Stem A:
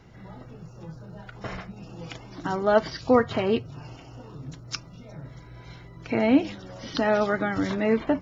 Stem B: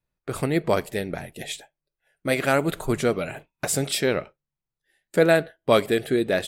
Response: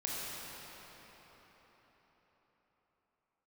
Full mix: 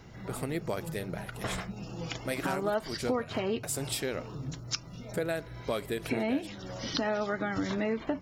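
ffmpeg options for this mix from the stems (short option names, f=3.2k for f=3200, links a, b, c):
-filter_complex "[0:a]highshelf=f=4.8k:g=6.5,volume=1dB[a];[1:a]highshelf=f=6.6k:g=6,volume=-8.5dB[b];[a][b]amix=inputs=2:normalize=0,acompressor=threshold=-29dB:ratio=4"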